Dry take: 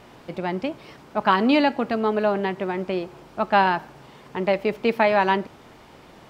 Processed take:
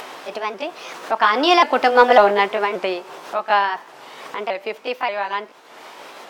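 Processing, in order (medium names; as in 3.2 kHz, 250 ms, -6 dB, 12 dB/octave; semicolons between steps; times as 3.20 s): sawtooth pitch modulation +3 st, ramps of 562 ms; Doppler pass-by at 2.10 s, 13 m/s, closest 4.2 m; high-pass 540 Hz 12 dB/octave; in parallel at +1 dB: upward compressor, threshold -29 dBFS; on the sum: sine folder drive 5 dB, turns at -1 dBFS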